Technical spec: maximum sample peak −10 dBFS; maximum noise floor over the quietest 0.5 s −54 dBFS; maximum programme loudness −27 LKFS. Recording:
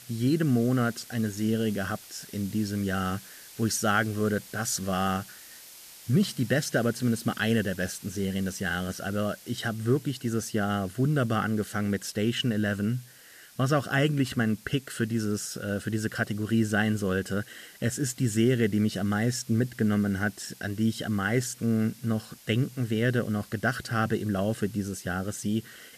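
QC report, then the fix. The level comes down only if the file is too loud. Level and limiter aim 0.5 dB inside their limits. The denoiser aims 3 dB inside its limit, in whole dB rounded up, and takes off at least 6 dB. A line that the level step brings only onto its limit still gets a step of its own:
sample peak −12.0 dBFS: in spec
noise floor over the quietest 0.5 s −52 dBFS: out of spec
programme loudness −28.5 LKFS: in spec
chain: broadband denoise 6 dB, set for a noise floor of −52 dBFS

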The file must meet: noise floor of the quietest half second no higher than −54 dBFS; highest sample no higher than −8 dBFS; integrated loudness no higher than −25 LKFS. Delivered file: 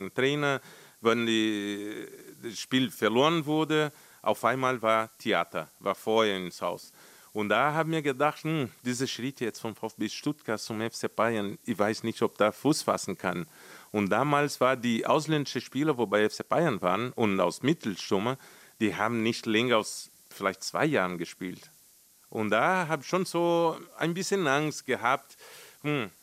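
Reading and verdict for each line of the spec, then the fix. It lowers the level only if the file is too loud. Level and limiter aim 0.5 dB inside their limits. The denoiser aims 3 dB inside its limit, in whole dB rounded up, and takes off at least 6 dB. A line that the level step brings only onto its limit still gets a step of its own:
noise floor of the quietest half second −59 dBFS: in spec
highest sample −10.0 dBFS: in spec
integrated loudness −28.5 LKFS: in spec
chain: no processing needed

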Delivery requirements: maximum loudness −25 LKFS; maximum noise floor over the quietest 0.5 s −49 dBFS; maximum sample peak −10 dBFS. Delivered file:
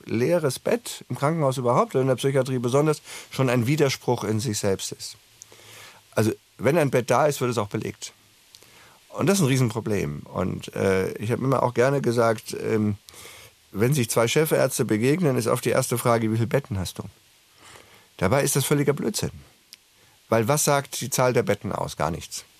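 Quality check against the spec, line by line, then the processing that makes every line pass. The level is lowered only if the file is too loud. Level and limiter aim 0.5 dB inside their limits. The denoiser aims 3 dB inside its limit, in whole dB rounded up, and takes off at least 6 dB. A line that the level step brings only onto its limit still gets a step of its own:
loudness −23.5 LKFS: out of spec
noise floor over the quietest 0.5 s −58 dBFS: in spec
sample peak −5.5 dBFS: out of spec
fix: level −2 dB
brickwall limiter −10.5 dBFS

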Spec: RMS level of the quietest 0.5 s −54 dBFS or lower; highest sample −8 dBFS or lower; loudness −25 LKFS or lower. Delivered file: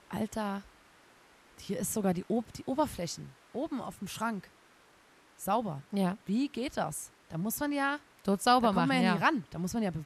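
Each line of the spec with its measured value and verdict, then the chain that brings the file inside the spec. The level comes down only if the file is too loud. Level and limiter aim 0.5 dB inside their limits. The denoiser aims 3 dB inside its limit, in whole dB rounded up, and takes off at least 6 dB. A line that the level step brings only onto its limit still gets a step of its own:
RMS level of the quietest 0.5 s −62 dBFS: in spec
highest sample −12.5 dBFS: in spec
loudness −32.0 LKFS: in spec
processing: no processing needed

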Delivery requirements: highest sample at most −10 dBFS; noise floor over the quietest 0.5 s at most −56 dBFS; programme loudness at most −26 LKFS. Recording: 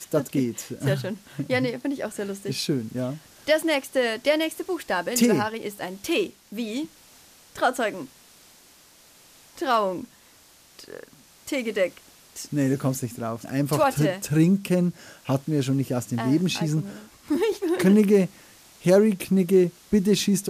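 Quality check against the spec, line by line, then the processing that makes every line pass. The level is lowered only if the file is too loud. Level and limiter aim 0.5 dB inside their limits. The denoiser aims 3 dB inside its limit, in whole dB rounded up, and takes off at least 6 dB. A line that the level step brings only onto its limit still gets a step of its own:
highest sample −8.0 dBFS: out of spec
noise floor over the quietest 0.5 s −54 dBFS: out of spec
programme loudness −24.5 LKFS: out of spec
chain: broadband denoise 6 dB, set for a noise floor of −54 dBFS
level −2 dB
brickwall limiter −10.5 dBFS

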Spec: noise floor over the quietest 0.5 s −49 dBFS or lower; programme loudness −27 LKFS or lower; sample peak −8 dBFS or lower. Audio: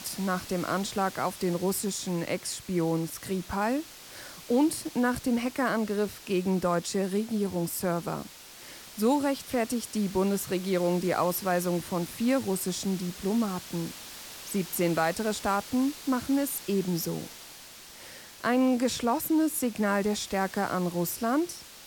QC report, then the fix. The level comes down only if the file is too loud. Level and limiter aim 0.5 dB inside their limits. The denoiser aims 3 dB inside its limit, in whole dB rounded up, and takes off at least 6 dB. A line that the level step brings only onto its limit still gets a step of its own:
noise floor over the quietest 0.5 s −48 dBFS: out of spec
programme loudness −29.0 LKFS: in spec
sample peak −13.5 dBFS: in spec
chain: broadband denoise 6 dB, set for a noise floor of −48 dBFS

